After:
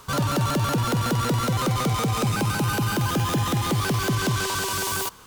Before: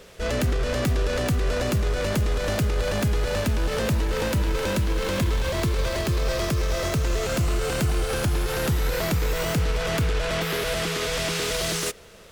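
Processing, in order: wide varispeed 2.34×

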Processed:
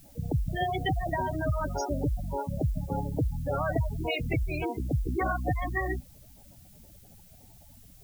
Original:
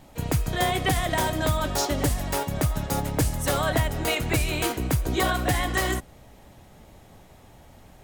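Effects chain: spectral gate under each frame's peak -10 dB strong; added noise blue -55 dBFS; gain -3 dB

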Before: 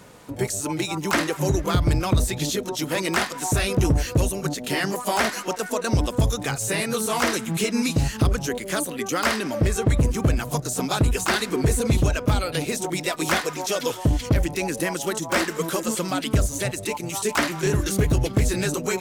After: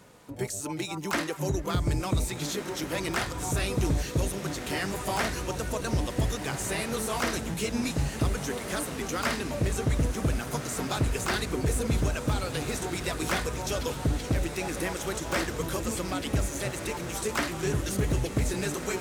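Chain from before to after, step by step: diffused feedback echo 1.592 s, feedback 60%, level -8.5 dB; 7.54–8.12 three-band expander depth 40%; gain -7 dB

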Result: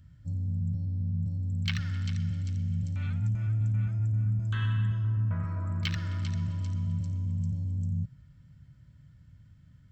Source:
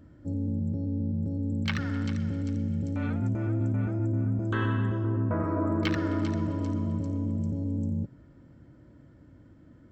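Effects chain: EQ curve 160 Hz 0 dB, 320 Hz -27 dB, 3000 Hz 0 dB; gain +1.5 dB

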